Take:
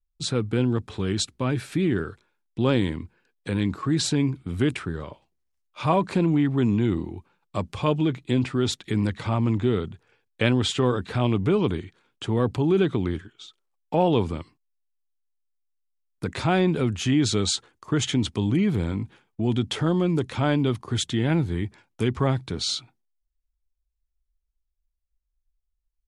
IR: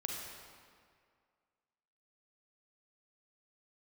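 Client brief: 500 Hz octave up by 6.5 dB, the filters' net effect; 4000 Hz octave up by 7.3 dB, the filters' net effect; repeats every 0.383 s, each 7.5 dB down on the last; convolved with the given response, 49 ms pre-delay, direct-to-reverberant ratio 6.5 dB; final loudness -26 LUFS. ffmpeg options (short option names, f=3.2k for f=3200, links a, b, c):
-filter_complex "[0:a]equalizer=f=500:t=o:g=8.5,equalizer=f=4k:t=o:g=8.5,aecho=1:1:383|766|1149|1532|1915:0.422|0.177|0.0744|0.0312|0.0131,asplit=2[a][b];[1:a]atrim=start_sample=2205,adelay=49[c];[b][c]afir=irnorm=-1:irlink=0,volume=-8dB[d];[a][d]amix=inputs=2:normalize=0,volume=-6dB"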